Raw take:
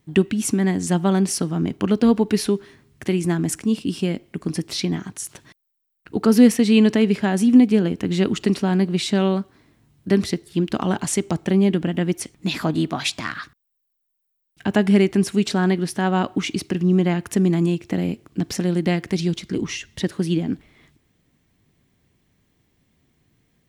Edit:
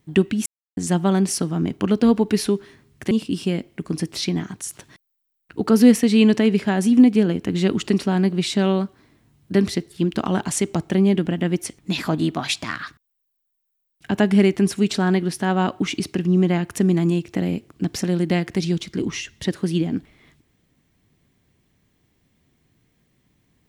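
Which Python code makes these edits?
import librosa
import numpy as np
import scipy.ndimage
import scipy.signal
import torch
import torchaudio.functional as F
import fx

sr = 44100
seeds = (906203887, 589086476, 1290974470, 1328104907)

y = fx.edit(x, sr, fx.silence(start_s=0.46, length_s=0.31),
    fx.cut(start_s=3.11, length_s=0.56), tone=tone)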